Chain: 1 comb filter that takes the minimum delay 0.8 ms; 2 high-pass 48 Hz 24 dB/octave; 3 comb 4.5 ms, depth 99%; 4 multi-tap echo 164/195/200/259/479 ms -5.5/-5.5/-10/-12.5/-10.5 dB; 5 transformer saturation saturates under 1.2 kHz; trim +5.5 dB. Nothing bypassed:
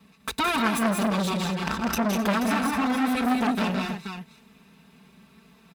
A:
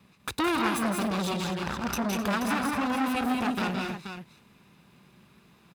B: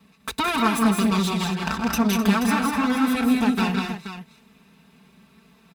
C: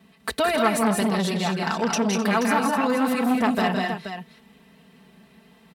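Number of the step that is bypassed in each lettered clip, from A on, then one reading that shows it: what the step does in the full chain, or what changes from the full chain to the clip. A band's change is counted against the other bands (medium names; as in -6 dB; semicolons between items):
3, loudness change -3.5 LU; 5, crest factor change -3.0 dB; 1, 500 Hz band +4.0 dB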